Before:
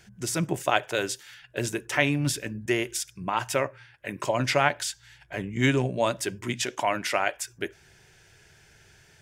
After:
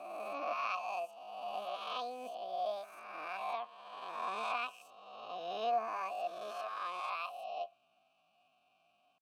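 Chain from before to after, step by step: reverse spectral sustain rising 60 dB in 1.67 s; pitch shift +9.5 st; vowel filter a; trim -6 dB

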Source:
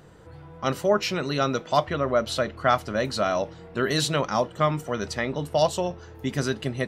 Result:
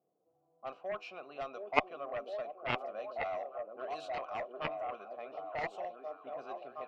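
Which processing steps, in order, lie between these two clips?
high-pass 200 Hz 12 dB/octave; level-controlled noise filter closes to 300 Hz, open at -20 dBFS; vowel filter a; repeats whose band climbs or falls 717 ms, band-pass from 340 Hz, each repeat 0.7 oct, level -1 dB; Chebyshev shaper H 3 -7 dB, 6 -34 dB, 8 -38 dB, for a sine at -13 dBFS; trim +4.5 dB

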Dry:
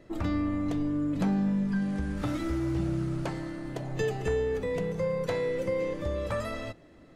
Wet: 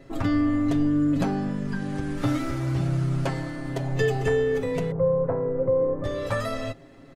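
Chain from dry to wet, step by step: 4.91–6.04 s: low-pass 1.2 kHz 24 dB/octave; comb 7.4 ms, depth 73%; trim +4 dB

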